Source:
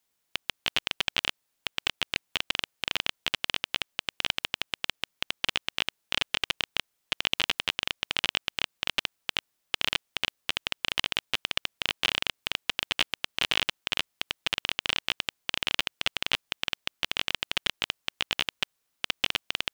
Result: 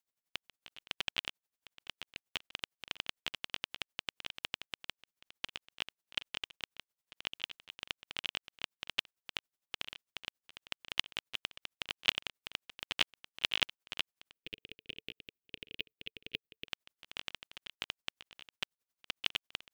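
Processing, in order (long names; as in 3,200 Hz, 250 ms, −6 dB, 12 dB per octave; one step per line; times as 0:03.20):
noise gate −27 dBFS, range −13 dB
0:14.33–0:16.68: drawn EQ curve 120 Hz 0 dB, 440 Hz +4 dB, 1,000 Hz −29 dB, 2,500 Hz −3 dB, 7,700 Hz −20 dB, 15,000 Hz −1 dB
tremolo with a sine in dB 11 Hz, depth 22 dB
level +5.5 dB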